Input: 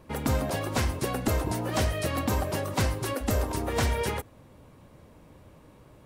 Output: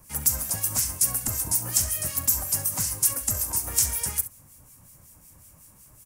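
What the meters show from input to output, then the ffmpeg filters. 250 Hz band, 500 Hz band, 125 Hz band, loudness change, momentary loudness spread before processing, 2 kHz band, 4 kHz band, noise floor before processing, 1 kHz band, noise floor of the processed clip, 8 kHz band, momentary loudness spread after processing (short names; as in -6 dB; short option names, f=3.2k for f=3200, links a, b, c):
-11.5 dB, -15.0 dB, -7.0 dB, +5.5 dB, 3 LU, -7.0 dB, +1.5 dB, -54 dBFS, -9.5 dB, -54 dBFS, +16.0 dB, 3 LU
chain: -filter_complex "[0:a]aexciter=amount=10.5:drive=5.1:freq=5.5k,equalizer=f=420:w=0.87:g=-12.5,acrossover=split=180|2800[a][b][c];[a]acompressor=threshold=-34dB:ratio=4[d];[b]acompressor=threshold=-38dB:ratio=4[e];[c]acompressor=threshold=-19dB:ratio=4[f];[d][e][f]amix=inputs=3:normalize=0,acrossover=split=2000[g][h];[g]aeval=exprs='val(0)*(1-0.7/2+0.7/2*cos(2*PI*5.4*n/s))':c=same[i];[h]aeval=exprs='val(0)*(1-0.7/2-0.7/2*cos(2*PI*5.4*n/s))':c=same[j];[i][j]amix=inputs=2:normalize=0,asplit=2[k][l];[l]aecho=0:1:41|67:0.141|0.188[m];[k][m]amix=inputs=2:normalize=0,volume=1.5dB"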